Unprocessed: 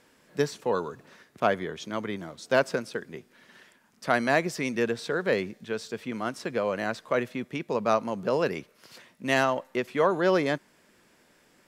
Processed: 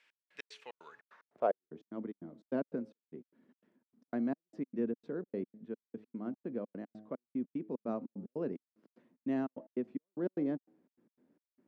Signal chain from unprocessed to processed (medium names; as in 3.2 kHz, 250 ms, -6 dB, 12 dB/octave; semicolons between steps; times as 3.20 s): de-hum 106.9 Hz, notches 8; trance gate "x..x.xx.xx.x.x" 149 bpm -60 dB; band-pass sweep 2.5 kHz -> 260 Hz, 0.85–1.72 s; trim -1 dB